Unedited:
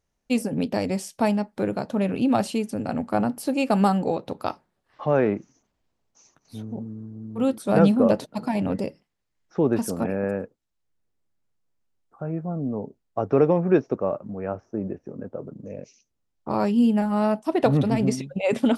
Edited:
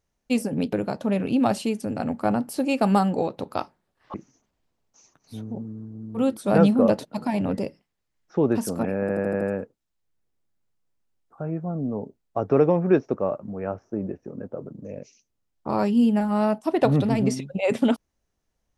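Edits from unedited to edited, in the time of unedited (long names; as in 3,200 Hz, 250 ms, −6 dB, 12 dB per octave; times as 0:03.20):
0:00.73–0:01.62: remove
0:05.03–0:05.35: remove
0:10.22: stutter 0.08 s, 6 plays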